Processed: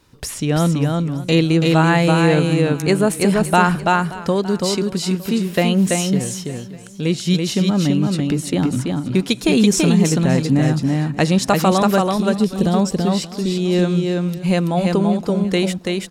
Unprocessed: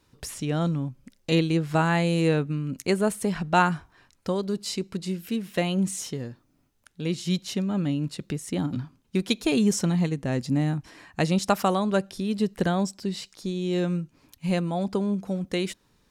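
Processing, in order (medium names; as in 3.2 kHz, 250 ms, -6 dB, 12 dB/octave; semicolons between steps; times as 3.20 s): 12.18–12.74 s: peaking EQ 1.4 kHz -14.5 dB 1.7 oct; delay 333 ms -3.5 dB; in parallel at +3 dB: peak limiter -15.5 dBFS, peak gain reduction 8.5 dB; on the sum: modulated delay 577 ms, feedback 35%, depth 92 cents, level -18 dB; trim +1 dB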